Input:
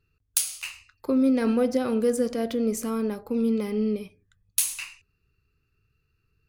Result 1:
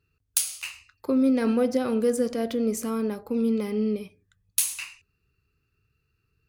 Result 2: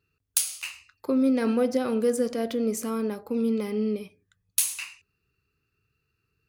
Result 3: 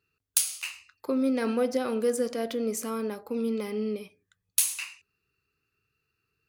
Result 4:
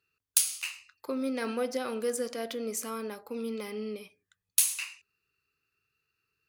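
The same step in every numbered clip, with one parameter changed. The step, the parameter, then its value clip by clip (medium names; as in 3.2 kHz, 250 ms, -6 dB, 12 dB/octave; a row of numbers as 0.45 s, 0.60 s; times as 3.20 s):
high-pass, cutoff frequency: 45 Hz, 150 Hz, 400 Hz, 1 kHz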